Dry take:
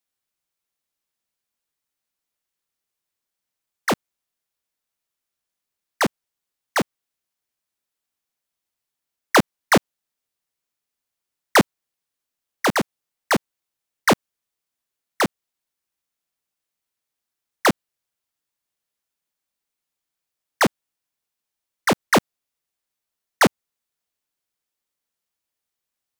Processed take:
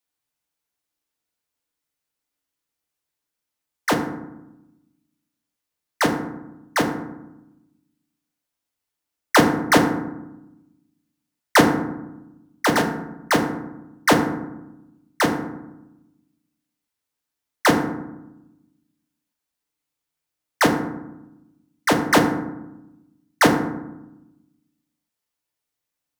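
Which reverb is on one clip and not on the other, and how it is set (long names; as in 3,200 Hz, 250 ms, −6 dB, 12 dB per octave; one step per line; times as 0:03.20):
feedback delay network reverb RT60 0.92 s, low-frequency decay 1.5×, high-frequency decay 0.45×, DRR 2 dB
level −1 dB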